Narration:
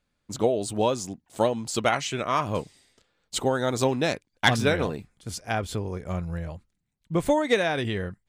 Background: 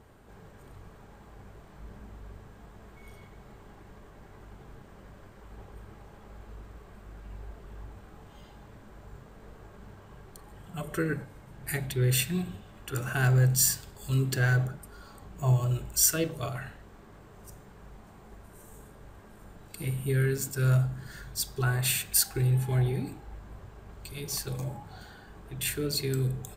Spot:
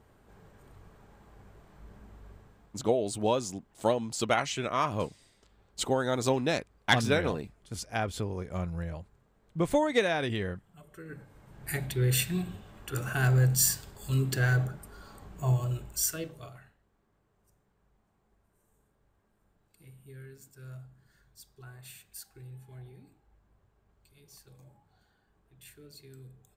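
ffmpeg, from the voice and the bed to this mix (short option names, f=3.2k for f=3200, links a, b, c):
-filter_complex "[0:a]adelay=2450,volume=-3.5dB[a];[1:a]volume=11.5dB,afade=t=out:st=2.31:d=0.54:silence=0.237137,afade=t=in:st=11.03:d=0.74:silence=0.149624,afade=t=out:st=15.27:d=1.48:silence=0.0944061[b];[a][b]amix=inputs=2:normalize=0"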